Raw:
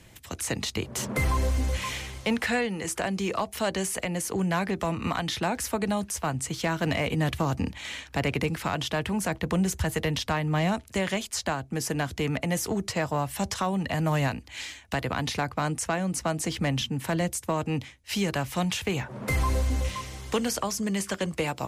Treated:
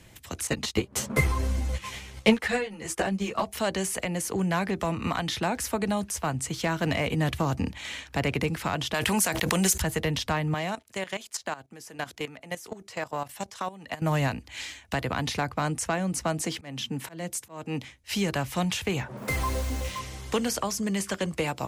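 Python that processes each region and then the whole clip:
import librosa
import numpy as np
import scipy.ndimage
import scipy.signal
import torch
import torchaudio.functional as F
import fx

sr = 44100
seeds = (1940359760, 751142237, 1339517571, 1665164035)

y = fx.chain(x, sr, fx.transient(attack_db=11, sustain_db=-11),
    fx.ensemble(), at=(0.47, 3.44))
y = fx.chain(y, sr, fx.tilt_eq(slope=3.0),
    fx.pre_swell(db_per_s=22.0), at=(8.94, 9.82))
y = fx.chain(y, sr, fx.highpass(hz=410.0, slope=6),
    fx.level_steps(step_db=15), at=(10.54, 14.02))
y = fx.chain(y, sr, fx.highpass(hz=160.0, slope=12),
    fx.auto_swell(attack_ms=296.0), at=(16.43, 17.84))
y = fx.chain(y, sr, fx.low_shelf(hz=200.0, db=-5.5),
    fx.mod_noise(seeds[0], snr_db=19), at=(19.17, 19.99))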